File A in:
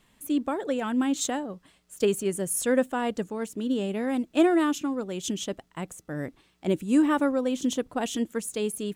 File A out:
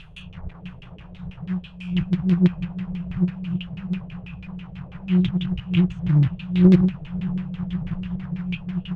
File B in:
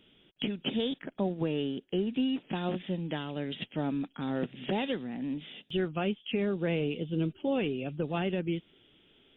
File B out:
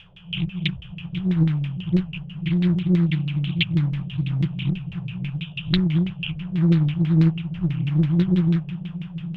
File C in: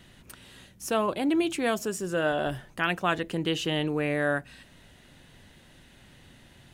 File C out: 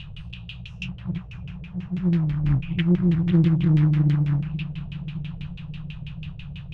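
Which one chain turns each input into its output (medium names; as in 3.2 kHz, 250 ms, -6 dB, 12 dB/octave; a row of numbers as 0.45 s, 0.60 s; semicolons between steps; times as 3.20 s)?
reverse spectral sustain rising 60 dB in 0.45 s; low-pass that closes with the level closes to 510 Hz, closed at -24 dBFS; FFT band-reject 190–2400 Hz; treble shelf 5.5 kHz -11 dB; companded quantiser 6-bit; echo that smears into a reverb 584 ms, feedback 67%, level -13.5 dB; LFO low-pass saw down 6.1 Hz 380–2800 Hz; loudspeaker Doppler distortion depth 0.62 ms; normalise loudness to -23 LUFS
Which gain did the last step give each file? +21.5 dB, +17.0 dB, +17.5 dB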